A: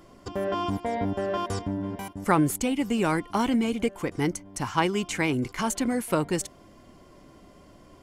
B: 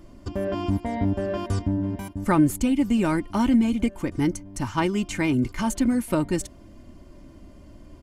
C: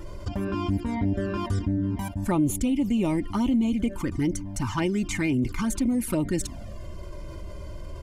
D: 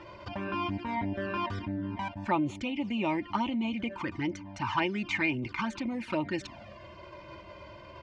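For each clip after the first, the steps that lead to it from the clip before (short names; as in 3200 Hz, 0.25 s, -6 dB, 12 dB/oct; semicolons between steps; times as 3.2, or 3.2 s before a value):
tone controls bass +12 dB, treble 0 dB; comb 3.3 ms, depth 48%; gain -2.5 dB
envelope flanger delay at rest 2.2 ms, full sweep at -17.5 dBFS; fast leveller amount 50%; gain -5 dB
speaker cabinet 170–4500 Hz, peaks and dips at 170 Hz -8 dB, 260 Hz -9 dB, 430 Hz -9 dB, 920 Hz +6 dB, 1700 Hz +3 dB, 2500 Hz +7 dB; gain -1 dB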